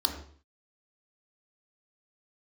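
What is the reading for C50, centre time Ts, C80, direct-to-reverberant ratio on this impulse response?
6.5 dB, 26 ms, 9.0 dB, 1.5 dB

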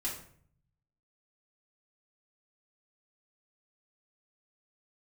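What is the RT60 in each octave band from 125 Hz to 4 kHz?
1.2 s, 0.80 s, 0.60 s, 0.50 s, 0.50 s, 0.40 s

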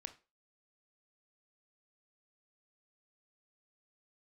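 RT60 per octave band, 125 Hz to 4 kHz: 0.20 s, 0.30 s, 0.35 s, 0.30 s, 0.30 s, 0.25 s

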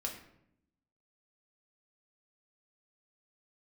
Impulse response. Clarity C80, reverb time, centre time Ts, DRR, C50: 10.0 dB, 0.75 s, 23 ms, -0.5 dB, 7.5 dB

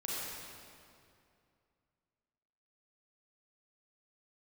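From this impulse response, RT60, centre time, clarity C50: 2.5 s, 166 ms, -4.5 dB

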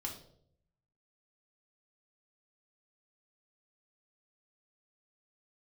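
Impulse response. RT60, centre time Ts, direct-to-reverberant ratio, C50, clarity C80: 0.65 s, 22 ms, -1.0 dB, 7.5 dB, 11.5 dB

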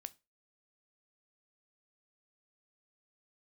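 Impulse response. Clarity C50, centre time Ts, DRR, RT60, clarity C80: 23.5 dB, 2 ms, 14.0 dB, 0.25 s, 31.0 dB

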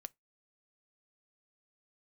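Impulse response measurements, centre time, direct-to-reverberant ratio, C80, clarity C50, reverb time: 1 ms, 13.0 dB, 43.5 dB, 32.5 dB, 0.20 s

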